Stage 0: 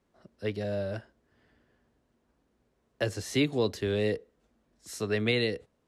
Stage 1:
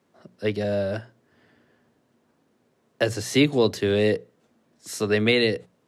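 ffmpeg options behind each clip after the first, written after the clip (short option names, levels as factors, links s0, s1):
-af "bandreject=f=60:t=h:w=6,bandreject=f=120:t=h:w=6,bandreject=f=180:t=h:w=6,deesser=0.65,highpass=f=100:w=0.5412,highpass=f=100:w=1.3066,volume=2.37"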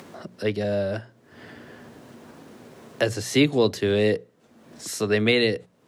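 -af "acompressor=mode=upward:threshold=0.0398:ratio=2.5"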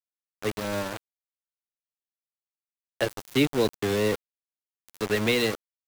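-af "aeval=exprs='val(0)*gte(abs(val(0)),0.0708)':c=same,volume=0.668"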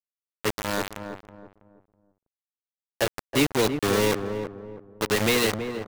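-filter_complex "[0:a]acrusher=bits=3:mix=0:aa=0.000001,asplit=2[s0][s1];[s1]adelay=325,lowpass=f=950:p=1,volume=0.473,asplit=2[s2][s3];[s3]adelay=325,lowpass=f=950:p=1,volume=0.36,asplit=2[s4][s5];[s5]adelay=325,lowpass=f=950:p=1,volume=0.36,asplit=2[s6][s7];[s7]adelay=325,lowpass=f=950:p=1,volume=0.36[s8];[s2][s4][s6][s8]amix=inputs=4:normalize=0[s9];[s0][s9]amix=inputs=2:normalize=0"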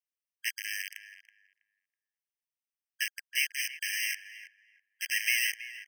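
-af "afftfilt=real='re*eq(mod(floor(b*sr/1024/1600),2),1)':imag='im*eq(mod(floor(b*sr/1024/1600),2),1)':win_size=1024:overlap=0.75"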